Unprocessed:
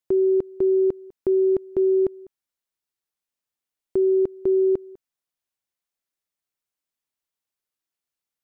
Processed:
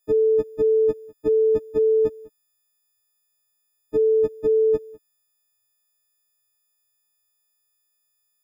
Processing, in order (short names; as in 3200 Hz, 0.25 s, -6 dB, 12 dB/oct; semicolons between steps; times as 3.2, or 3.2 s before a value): frequency quantiser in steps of 6 st; low shelf 160 Hz +11.5 dB